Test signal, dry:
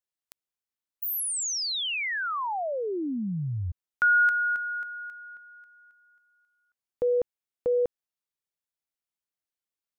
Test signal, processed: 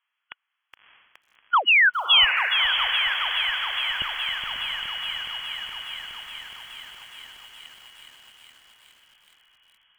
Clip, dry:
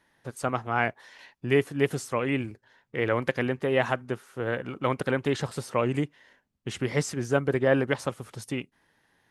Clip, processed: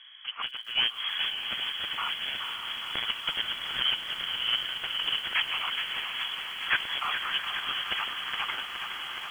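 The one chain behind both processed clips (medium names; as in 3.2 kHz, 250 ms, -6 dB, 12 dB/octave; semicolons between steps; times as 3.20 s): four frequency bands reordered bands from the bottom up 4321; Chebyshev high-pass 1.1 kHz, order 3; in parallel at 0 dB: peak limiter -19.5 dBFS; on the sum: compression 6:1, threshold -25 dBFS; sine folder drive 14 dB, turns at -11.5 dBFS; brick-wall FIR low-pass 3.4 kHz; on a send: echo that smears into a reverb 615 ms, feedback 65%, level -7 dB; on the sum: bit-crushed delay 418 ms, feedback 80%, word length 8-bit, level -8 dB; trim -2.5 dB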